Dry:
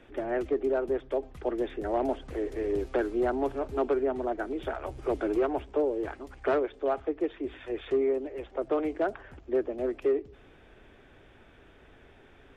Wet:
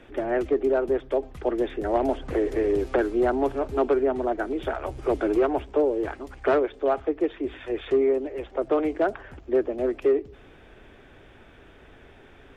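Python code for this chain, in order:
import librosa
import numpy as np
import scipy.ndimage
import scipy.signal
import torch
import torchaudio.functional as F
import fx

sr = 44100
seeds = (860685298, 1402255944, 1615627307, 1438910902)

y = fx.band_squash(x, sr, depth_pct=100, at=(1.95, 2.98))
y = y * librosa.db_to_amplitude(5.0)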